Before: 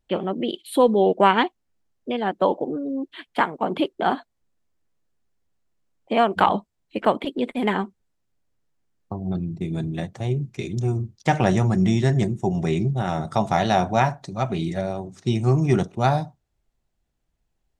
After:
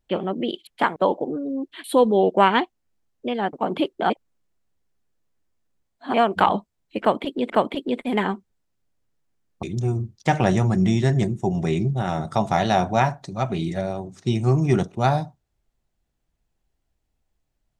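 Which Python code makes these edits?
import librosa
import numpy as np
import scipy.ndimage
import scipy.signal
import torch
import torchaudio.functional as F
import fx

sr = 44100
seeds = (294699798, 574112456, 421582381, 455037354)

y = fx.edit(x, sr, fx.swap(start_s=0.67, length_s=1.69, other_s=3.24, other_length_s=0.29),
    fx.reverse_span(start_s=4.1, length_s=2.04),
    fx.repeat(start_s=7.0, length_s=0.5, count=2),
    fx.cut(start_s=9.13, length_s=1.5), tone=tone)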